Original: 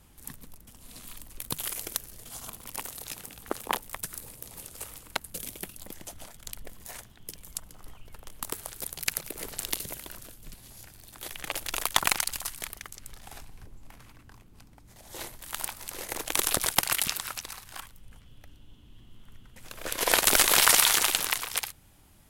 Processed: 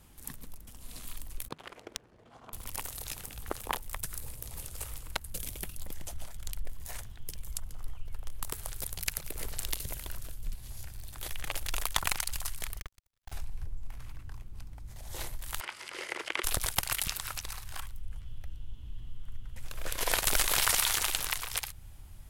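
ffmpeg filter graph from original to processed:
ffmpeg -i in.wav -filter_complex "[0:a]asettb=1/sr,asplit=3[link_01][link_02][link_03];[link_01]atrim=end=1.484[link_04];[link_02]atrim=start=1.48:end=2.53,asetpts=PTS-STARTPTS,afade=type=in:duration=0.004:curve=qsin,afade=type=out:start_time=1.046:duration=0.004:curve=qsin,highpass=220,acrusher=bits=8:mix=0:aa=0.5,adynamicsmooth=sensitivity=1.5:basefreq=1300[link_05];[link_03]atrim=start=2.526[link_06];[link_04][link_05]acrossfade=duration=0.004:curve1=hsin:curve2=qsin[link_07];[link_07][link_06]acrossfade=duration=0.004:curve1=qsin:curve2=hsin,asettb=1/sr,asplit=3[link_08][link_09][link_10];[link_08]atrim=end=12.804[link_11];[link_09]atrim=start=12.8:end=13.32,asetpts=PTS-STARTPTS,afade=type=in:duration=0.004:curve=qsin,afade=type=out:start_time=0.516:duration=0.004:curve=qsin,acrossover=split=250 6800:gain=0.112 1 0.141[link_12][link_13][link_14];[link_12][link_13][link_14]amix=inputs=3:normalize=0,acrusher=bits=5:dc=4:mix=0:aa=0.000001,agate=range=-29dB:threshold=-57dB:ratio=16:release=100:detection=peak[link_15];[link_10]atrim=start=13.316[link_16];[link_11][link_15]acrossfade=duration=0.004:curve1=hsin:curve2=qsin[link_17];[link_17][link_16]acrossfade=duration=0.004:curve1=qsin:curve2=hsin,asettb=1/sr,asplit=3[link_18][link_19][link_20];[link_18]atrim=end=15.604[link_21];[link_19]atrim=start=15.6:end=16.44,asetpts=PTS-STARTPTS,afade=type=in:duration=0.004:curve=qsin,afade=type=out:start_time=0.836:duration=0.004:curve=qsin,acrossover=split=2700[link_22][link_23];[link_23]acompressor=threshold=-43dB:ratio=4:attack=1:release=60[link_24];[link_22][link_24]amix=inputs=2:normalize=0,highpass=340,equalizer=frequency=360:width_type=q:width=4:gain=7,equalizer=frequency=750:width_type=q:width=4:gain=-5,equalizer=frequency=1400:width_type=q:width=4:gain=4,equalizer=frequency=2100:width_type=q:width=4:gain=8,equalizer=frequency=3000:width_type=q:width=4:gain=8,equalizer=frequency=4900:width_type=q:width=4:gain=7,lowpass=frequency=9800:width=0.5412,lowpass=frequency=9800:width=1.3066[link_25];[link_20]atrim=start=16.436[link_26];[link_21][link_25]acrossfade=duration=0.004:curve1=hsin:curve2=qsin[link_27];[link_27][link_26]acrossfade=duration=0.004:curve1=qsin:curve2=hsin,asubboost=boost=5.5:cutoff=99,acompressor=threshold=-35dB:ratio=1.5" out.wav

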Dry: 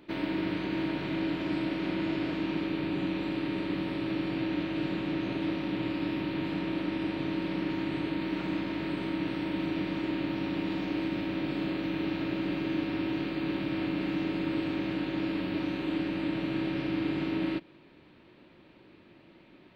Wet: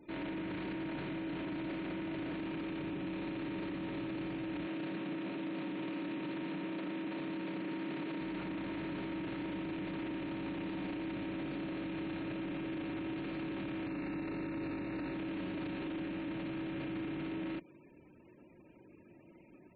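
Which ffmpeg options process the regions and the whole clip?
ffmpeg -i in.wav -filter_complex "[0:a]asettb=1/sr,asplit=3[link_01][link_02][link_03];[link_01]atrim=end=4.674[link_04];[link_02]atrim=start=4.67:end=8.21,asetpts=PTS-STARTPTS,afade=type=in:duration=0.004:curve=qsin,afade=type=out:start_time=3.536:duration=0.004:curve=qsin,highpass=frequency=160:width=0.5412,highpass=frequency=160:width=1.3066,bandreject=frequency=830:width=20[link_05];[link_03]atrim=start=8.206[link_06];[link_04][link_05]acrossfade=duration=0.004:curve1=hsin:curve2=qsin[link_07];[link_07][link_06]acrossfade=duration=0.004:curve1=qsin:curve2=hsin,asettb=1/sr,asplit=3[link_08][link_09][link_10];[link_08]atrim=end=13.864[link_11];[link_09]atrim=start=13.86:end=15.14,asetpts=PTS-STARTPTS,afade=type=in:duration=0.004:curve=qsin,afade=type=out:start_time=1.276:duration=0.004:curve=qsin,asuperstop=centerf=3200:order=4:qfactor=3.9,asplit=2[link_12][link_13];[link_13]adelay=41,volume=-7dB[link_14];[link_12][link_14]amix=inputs=2:normalize=0,atrim=end_sample=56448[link_15];[link_10]atrim=start=15.136[link_16];[link_11][link_15]acrossfade=duration=0.004:curve1=hsin:curve2=qsin[link_17];[link_17][link_16]acrossfade=duration=0.004:curve1=qsin:curve2=hsin,acrossover=split=3400[link_18][link_19];[link_19]acompressor=threshold=-60dB:ratio=4:attack=1:release=60[link_20];[link_18][link_20]amix=inputs=2:normalize=0,alimiter=level_in=7dB:limit=-24dB:level=0:latency=1:release=10,volume=-7dB,afftfilt=real='re*gte(hypot(re,im),0.00178)':imag='im*gte(hypot(re,im),0.00178)':win_size=1024:overlap=0.75,volume=-2dB" out.wav

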